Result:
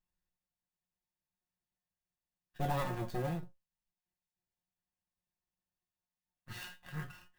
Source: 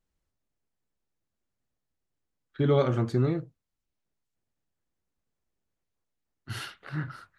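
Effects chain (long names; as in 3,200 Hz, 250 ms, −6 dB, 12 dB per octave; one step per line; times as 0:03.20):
lower of the sound and its delayed copy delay 1.1 ms
tuned comb filter 180 Hz, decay 0.18 s, harmonics all, mix 90%
converter with an unsteady clock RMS 0.021 ms
level +2.5 dB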